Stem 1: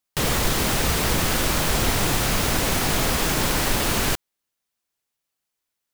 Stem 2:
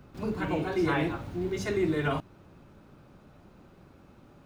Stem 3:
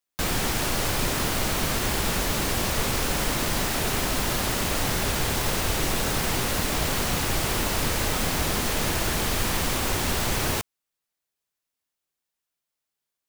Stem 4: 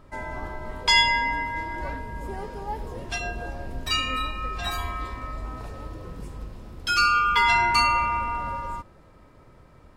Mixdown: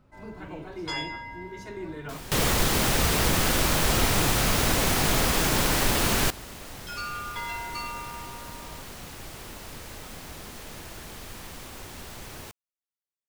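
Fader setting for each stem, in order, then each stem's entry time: −1.5, −10.0, −16.0, −15.0 decibels; 2.15, 0.00, 1.90, 0.00 seconds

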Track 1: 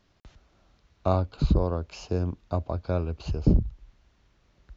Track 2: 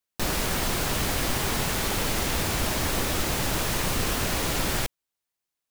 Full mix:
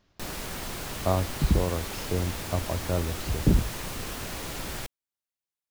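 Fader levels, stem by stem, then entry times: −1.0, −9.0 decibels; 0.00, 0.00 seconds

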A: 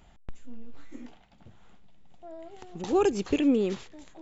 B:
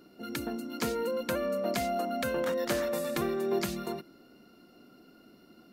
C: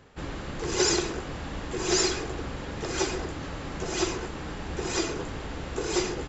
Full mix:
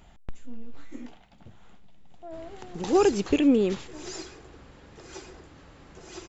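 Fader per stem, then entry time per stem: +3.0 dB, muted, −15.0 dB; 0.00 s, muted, 2.15 s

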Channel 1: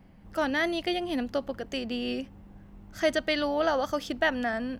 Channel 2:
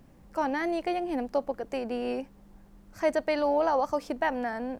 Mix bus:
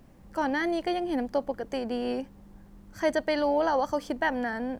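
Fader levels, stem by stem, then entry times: −11.5, +1.0 decibels; 0.00, 0.00 seconds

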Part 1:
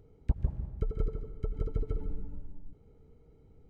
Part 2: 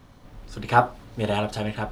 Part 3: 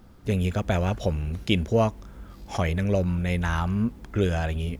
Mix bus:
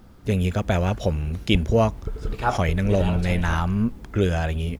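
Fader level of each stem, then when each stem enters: +2.5, −5.5, +2.5 decibels; 1.25, 1.70, 0.00 seconds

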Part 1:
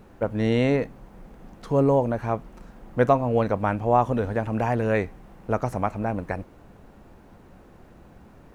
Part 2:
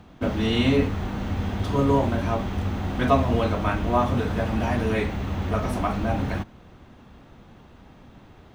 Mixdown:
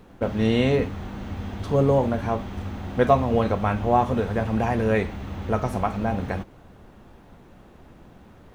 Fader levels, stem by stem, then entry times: −0.5, −5.5 decibels; 0.00, 0.00 seconds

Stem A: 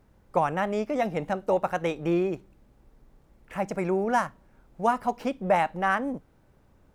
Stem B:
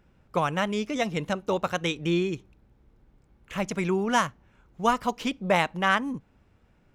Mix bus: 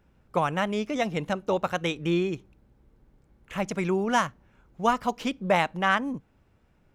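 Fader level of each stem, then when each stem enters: −11.0, −2.5 decibels; 0.00, 0.00 seconds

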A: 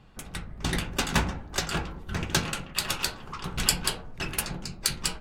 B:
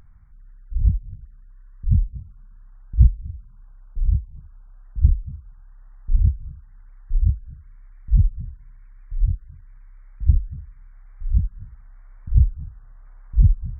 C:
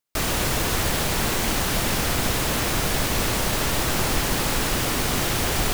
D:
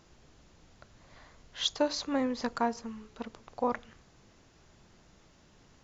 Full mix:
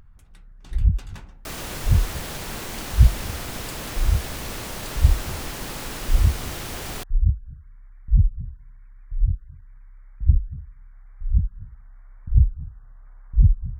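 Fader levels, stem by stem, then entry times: −20.0 dB, −0.5 dB, −9.5 dB, muted; 0.00 s, 0.00 s, 1.30 s, muted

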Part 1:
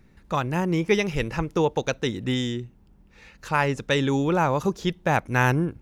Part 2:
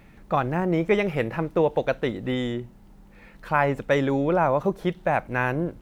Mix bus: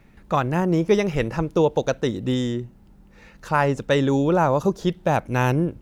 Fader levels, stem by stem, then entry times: −1.0, −4.5 decibels; 0.00, 0.00 seconds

